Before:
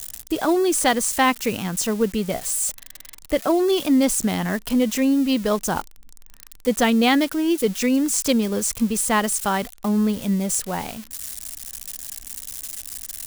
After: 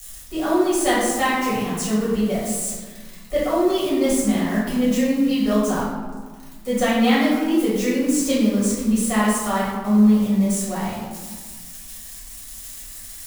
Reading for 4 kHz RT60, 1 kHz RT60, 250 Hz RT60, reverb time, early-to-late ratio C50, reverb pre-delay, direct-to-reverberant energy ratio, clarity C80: 0.75 s, 1.5 s, 2.1 s, 1.5 s, -0.5 dB, 4 ms, -9.5 dB, 3.0 dB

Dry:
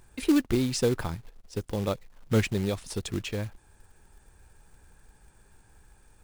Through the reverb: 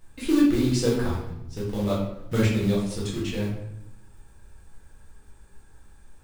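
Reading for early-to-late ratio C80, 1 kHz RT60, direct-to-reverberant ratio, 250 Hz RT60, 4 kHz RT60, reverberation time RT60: 5.5 dB, 0.75 s, -6.5 dB, 1.2 s, 0.60 s, 0.80 s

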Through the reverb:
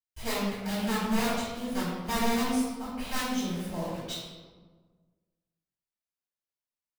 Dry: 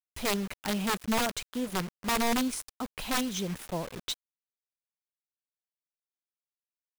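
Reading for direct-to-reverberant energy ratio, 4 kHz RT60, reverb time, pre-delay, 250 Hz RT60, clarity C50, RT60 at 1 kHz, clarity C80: -13.5 dB, 0.80 s, 1.4 s, 3 ms, 1.8 s, -1.0 dB, 1.3 s, 1.5 dB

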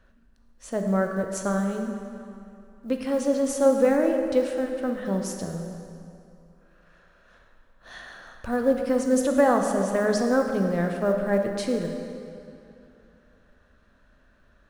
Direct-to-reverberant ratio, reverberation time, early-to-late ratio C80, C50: 3.0 dB, 2.7 s, 5.5 dB, 4.5 dB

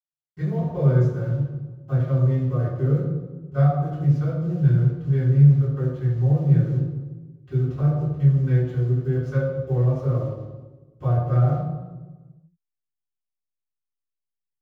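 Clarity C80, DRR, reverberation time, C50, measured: 2.5 dB, -25.0 dB, 1.2 s, 0.0 dB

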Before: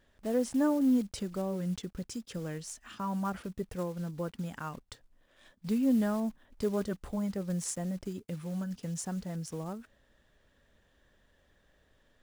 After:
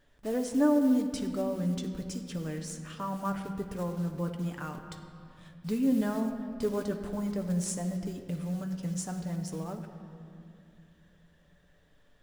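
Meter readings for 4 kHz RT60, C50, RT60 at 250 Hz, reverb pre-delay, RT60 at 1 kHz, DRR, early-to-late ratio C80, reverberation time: 1.6 s, 7.5 dB, 3.2 s, 7 ms, 2.4 s, 3.5 dB, 8.5 dB, 2.5 s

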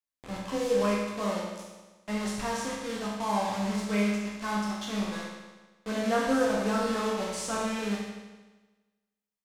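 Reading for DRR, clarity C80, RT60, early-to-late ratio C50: -5.5 dB, 2.5 dB, 1.2 s, 0.0 dB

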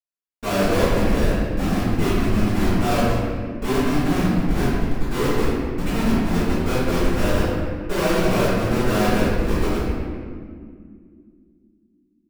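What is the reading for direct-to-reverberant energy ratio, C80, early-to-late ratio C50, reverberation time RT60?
-18.0 dB, -1.0 dB, -4.0 dB, 2.1 s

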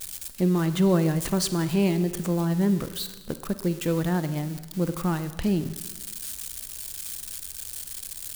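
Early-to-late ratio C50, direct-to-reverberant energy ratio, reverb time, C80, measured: 12.0 dB, 11.0 dB, 1.2 s, 14.0 dB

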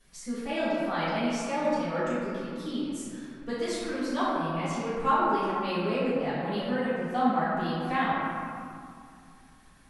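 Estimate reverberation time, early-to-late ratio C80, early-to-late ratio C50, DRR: 2.4 s, -1.0 dB, -4.0 dB, -15.0 dB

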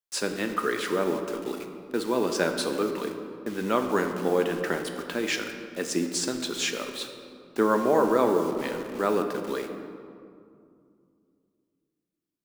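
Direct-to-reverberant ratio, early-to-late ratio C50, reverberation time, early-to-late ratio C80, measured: 4.5 dB, 7.0 dB, 2.4 s, 7.5 dB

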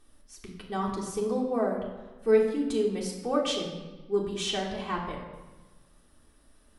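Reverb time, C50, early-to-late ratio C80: 1.2 s, 4.5 dB, 6.5 dB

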